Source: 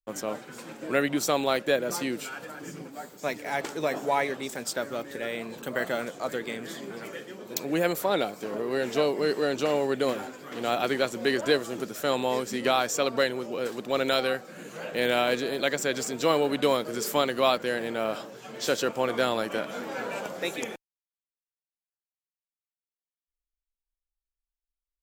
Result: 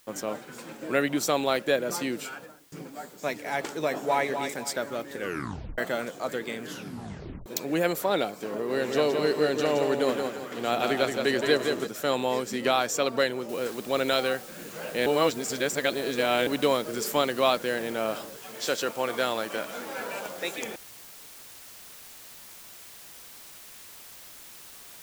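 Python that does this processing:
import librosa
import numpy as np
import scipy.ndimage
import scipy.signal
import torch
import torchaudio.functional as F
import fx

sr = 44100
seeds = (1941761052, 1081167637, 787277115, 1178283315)

y = fx.studio_fade_out(x, sr, start_s=2.26, length_s=0.46)
y = fx.echo_throw(y, sr, start_s=3.84, length_s=0.44, ms=250, feedback_pct=35, wet_db=-7.5)
y = fx.echo_feedback(y, sr, ms=170, feedback_pct=34, wet_db=-5.5, at=(8.68, 11.86), fade=0.02)
y = fx.noise_floor_step(y, sr, seeds[0], at_s=13.49, before_db=-60, after_db=-47, tilt_db=0.0)
y = fx.low_shelf(y, sr, hz=380.0, db=-6.5, at=(18.36, 20.65))
y = fx.edit(y, sr, fx.tape_stop(start_s=5.16, length_s=0.62),
    fx.tape_stop(start_s=6.63, length_s=0.83),
    fx.reverse_span(start_s=15.06, length_s=1.41), tone=tone)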